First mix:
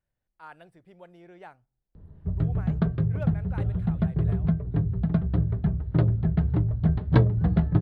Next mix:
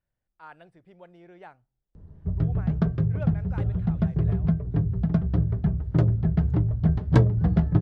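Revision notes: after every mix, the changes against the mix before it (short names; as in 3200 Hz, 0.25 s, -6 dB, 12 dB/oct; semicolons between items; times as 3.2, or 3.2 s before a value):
background: remove Chebyshev low-pass 4200 Hz, order 4; master: add air absorption 55 m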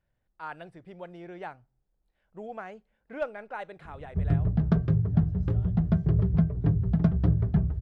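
speech +7.0 dB; background: entry +1.90 s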